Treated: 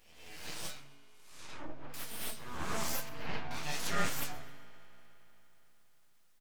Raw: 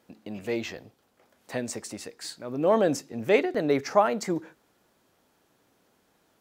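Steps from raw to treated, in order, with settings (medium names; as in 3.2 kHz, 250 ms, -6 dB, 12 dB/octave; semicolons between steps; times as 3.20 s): reverse spectral sustain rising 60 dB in 0.88 s; tilt shelf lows -9 dB, about 1.4 kHz; inharmonic resonator 72 Hz, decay 0.56 s, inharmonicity 0.002; full-wave rectifier; 0.77–1.94 s: low-pass that closes with the level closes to 620 Hz, closed at -34 dBFS; 3.09–3.51 s: tape spacing loss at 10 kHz 31 dB; frequency-shifting echo 131 ms, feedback 42%, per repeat +140 Hz, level -22 dB; on a send at -13.5 dB: reverberation RT60 4.0 s, pre-delay 3 ms; on the sum: trim +2 dB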